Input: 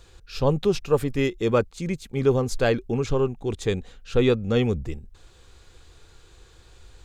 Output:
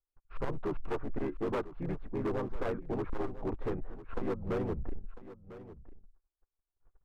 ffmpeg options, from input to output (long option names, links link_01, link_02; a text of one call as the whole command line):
ffmpeg -i in.wav -filter_complex "[0:a]agate=range=-46dB:threshold=-42dB:ratio=16:detection=peak,lowpass=frequency=1300:width=0.5412,lowpass=frequency=1300:width=1.3066,equalizer=frequency=140:width=0.31:gain=-14,acompressor=threshold=-37dB:ratio=2.5,asplit=4[link_01][link_02][link_03][link_04];[link_02]asetrate=22050,aresample=44100,atempo=2,volume=-16dB[link_05];[link_03]asetrate=35002,aresample=44100,atempo=1.25992,volume=-2dB[link_06];[link_04]asetrate=37084,aresample=44100,atempo=1.18921,volume=-14dB[link_07];[link_01][link_05][link_06][link_07]amix=inputs=4:normalize=0,asoftclip=type=hard:threshold=-33.5dB,asplit=2[link_08][link_09];[link_09]aecho=0:1:999:0.168[link_10];[link_08][link_10]amix=inputs=2:normalize=0,volume=4.5dB" out.wav